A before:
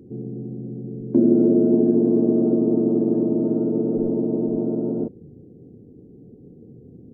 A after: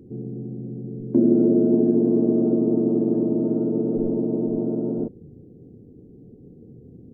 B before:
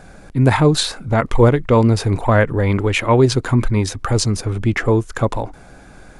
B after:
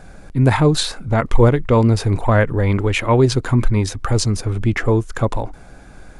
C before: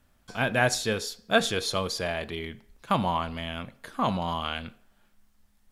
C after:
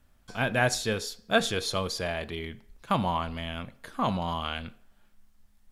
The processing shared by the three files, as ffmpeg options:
-af "lowshelf=f=70:g=6.5,volume=0.841"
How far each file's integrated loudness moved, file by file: -1.0 LU, -0.5 LU, -1.5 LU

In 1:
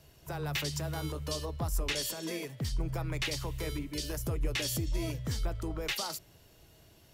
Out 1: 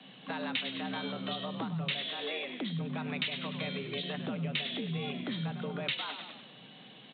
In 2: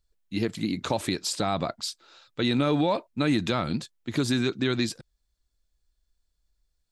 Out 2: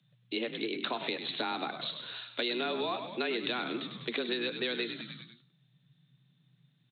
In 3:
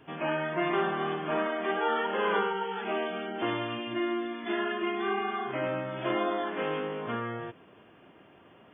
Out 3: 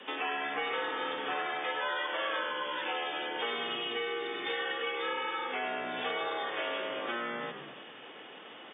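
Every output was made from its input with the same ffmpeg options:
-filter_complex "[0:a]bandreject=f=277.5:t=h:w=4,bandreject=f=555:t=h:w=4,bandreject=f=832.5:t=h:w=4,bandreject=f=1110:t=h:w=4,bandreject=f=1387.5:t=h:w=4,bandreject=f=1665:t=h:w=4,bandreject=f=1942.5:t=h:w=4,bandreject=f=2220:t=h:w=4,bandreject=f=2497.5:t=h:w=4,bandreject=f=2775:t=h:w=4,bandreject=f=3052.5:t=h:w=4,bandreject=f=3330:t=h:w=4,bandreject=f=3607.5:t=h:w=4,bandreject=f=3885:t=h:w=4,bandreject=f=4162.5:t=h:w=4,bandreject=f=4440:t=h:w=4,bandreject=f=4717.5:t=h:w=4,bandreject=f=4995:t=h:w=4,bandreject=f=5272.5:t=h:w=4,bandreject=f=5550:t=h:w=4,bandreject=f=5827.5:t=h:w=4,bandreject=f=6105:t=h:w=4,bandreject=f=6382.5:t=h:w=4,bandreject=f=6660:t=h:w=4,bandreject=f=6937.5:t=h:w=4,bandreject=f=7215:t=h:w=4,bandreject=f=7492.5:t=h:w=4,bandreject=f=7770:t=h:w=4,bandreject=f=8047.5:t=h:w=4,bandreject=f=8325:t=h:w=4,bandreject=f=8602.5:t=h:w=4,bandreject=f=8880:t=h:w=4,bandreject=f=9157.5:t=h:w=4,bandreject=f=9435:t=h:w=4,bandreject=f=9712.5:t=h:w=4,bandreject=f=9990:t=h:w=4,bandreject=f=10267.5:t=h:w=4,bandreject=f=10545:t=h:w=4,asplit=6[s0][s1][s2][s3][s4][s5];[s1]adelay=99,afreqshift=-69,volume=0.282[s6];[s2]adelay=198,afreqshift=-138,volume=0.127[s7];[s3]adelay=297,afreqshift=-207,volume=0.0569[s8];[s4]adelay=396,afreqshift=-276,volume=0.0257[s9];[s5]adelay=495,afreqshift=-345,volume=0.0116[s10];[s0][s6][s7][s8][s9][s10]amix=inputs=6:normalize=0,acrossover=split=260[s11][s12];[s12]crystalizer=i=7.5:c=0[s13];[s11][s13]amix=inputs=2:normalize=0,aresample=8000,aresample=44100,acompressor=threshold=0.0112:ratio=3,afreqshift=120,volume=1.5"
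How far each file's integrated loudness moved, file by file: -0.5 LU, -7.0 LU, -3.0 LU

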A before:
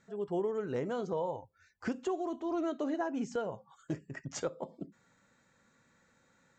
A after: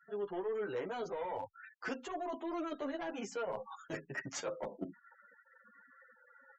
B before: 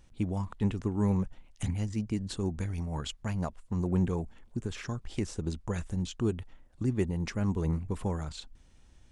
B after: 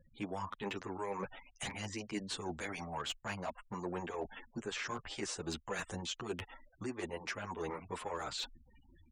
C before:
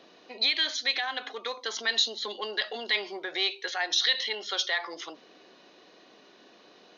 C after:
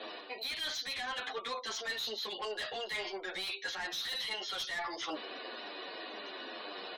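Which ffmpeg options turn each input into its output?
-filter_complex "[0:a]acrossover=split=390|3000[s0][s1][s2];[s0]acompressor=threshold=0.0112:ratio=10[s3];[s3][s1][s2]amix=inputs=3:normalize=0,asplit=2[s4][s5];[s5]highpass=f=720:p=1,volume=12.6,asoftclip=type=tanh:threshold=0.168[s6];[s4][s6]amix=inputs=2:normalize=0,lowpass=f=4600:p=1,volume=0.501,afftfilt=real='re*gte(hypot(re,im),0.00562)':imag='im*gte(hypot(re,im),0.00562)':win_size=1024:overlap=0.75,areverse,acompressor=threshold=0.0158:ratio=8,areverse,asoftclip=type=hard:threshold=0.0316,asplit=2[s7][s8];[s8]adelay=9,afreqshift=-2[s9];[s7][s9]amix=inputs=2:normalize=1,volume=1.26"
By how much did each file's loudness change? -4.0 LU, -8.5 LU, -10.0 LU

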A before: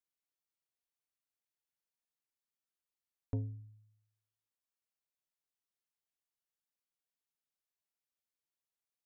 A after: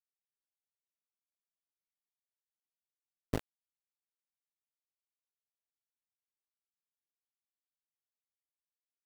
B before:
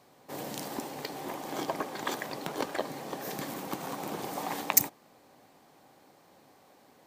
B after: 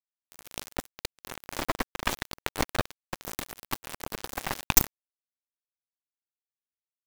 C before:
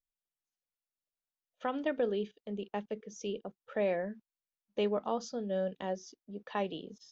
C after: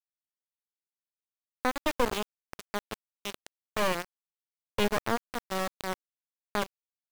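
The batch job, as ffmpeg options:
-af "aeval=exprs='val(0)*gte(abs(val(0)),0.0316)':c=same,acontrast=86,aeval=exprs='1*(cos(1*acos(clip(val(0)/1,-1,1)))-cos(1*PI/2))+0.251*(cos(8*acos(clip(val(0)/1,-1,1)))-cos(8*PI/2))':c=same,volume=0.596"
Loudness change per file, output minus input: +2.0 LU, +2.0 LU, +3.0 LU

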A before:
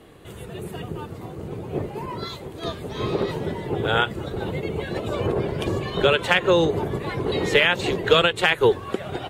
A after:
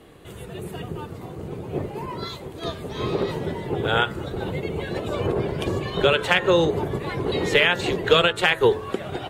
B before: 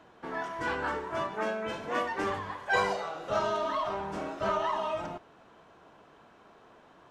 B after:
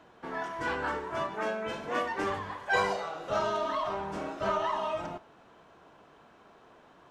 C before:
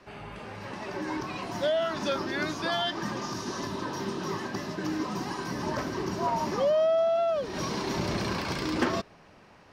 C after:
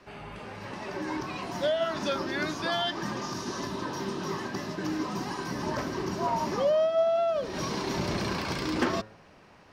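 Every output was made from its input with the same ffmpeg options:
-af "bandreject=f=108.1:t=h:w=4,bandreject=f=216.2:t=h:w=4,bandreject=f=324.3:t=h:w=4,bandreject=f=432.4:t=h:w=4,bandreject=f=540.5:t=h:w=4,bandreject=f=648.6:t=h:w=4,bandreject=f=756.7:t=h:w=4,bandreject=f=864.8:t=h:w=4,bandreject=f=972.9:t=h:w=4,bandreject=f=1081:t=h:w=4,bandreject=f=1189.1:t=h:w=4,bandreject=f=1297.2:t=h:w=4,bandreject=f=1405.3:t=h:w=4,bandreject=f=1513.4:t=h:w=4,bandreject=f=1621.5:t=h:w=4,bandreject=f=1729.6:t=h:w=4,bandreject=f=1837.7:t=h:w=4,bandreject=f=1945.8:t=h:w=4"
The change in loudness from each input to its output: 0.0 LU, 0.0 LU, -0.5 LU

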